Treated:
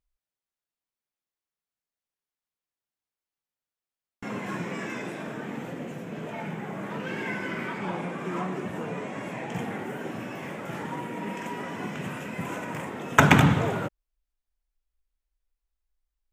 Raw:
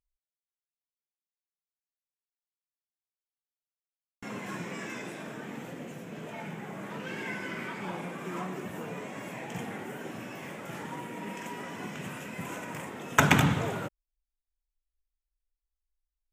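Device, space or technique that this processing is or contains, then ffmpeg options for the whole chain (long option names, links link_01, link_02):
behind a face mask: -filter_complex "[0:a]asettb=1/sr,asplit=3[link_01][link_02][link_03];[link_01]atrim=end=7.784[link_04];[link_02]atrim=start=7.78:end=9.53,asetpts=PTS-STARTPTS,afade=type=in:duration=0.004:curve=qsin,afade=type=out:start_time=1.746:duration=0.004:curve=qsin,lowpass=11000[link_05];[link_03]atrim=start=9.526[link_06];[link_04][link_05]acrossfade=duration=0.004:curve1=hsin:curve2=qsin[link_07];[link_07][link_06]acrossfade=duration=0.004:curve1=qsin:curve2=hsin,highshelf=frequency=3400:gain=-7.5,volume=5.5dB"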